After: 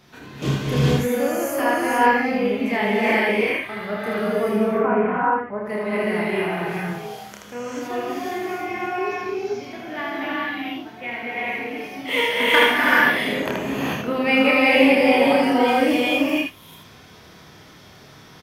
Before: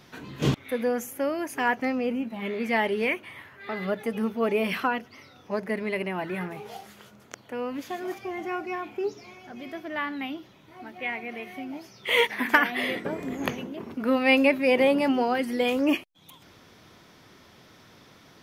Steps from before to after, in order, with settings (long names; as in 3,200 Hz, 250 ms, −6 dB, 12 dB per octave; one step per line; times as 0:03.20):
0:04.35–0:05.65: low-pass filter 1,600 Hz 24 dB per octave
ambience of single reflections 29 ms −3 dB, 79 ms −3.5 dB
reverb whose tail is shaped and stops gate 470 ms rising, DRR −5.5 dB
level −2 dB